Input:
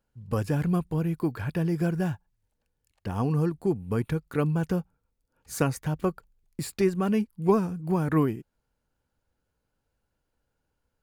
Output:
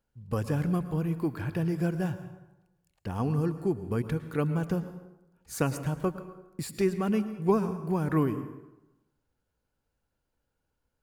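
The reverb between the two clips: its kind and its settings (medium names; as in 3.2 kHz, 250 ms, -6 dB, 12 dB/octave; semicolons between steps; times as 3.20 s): plate-style reverb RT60 0.98 s, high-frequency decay 0.65×, pre-delay 95 ms, DRR 11.5 dB; trim -2.5 dB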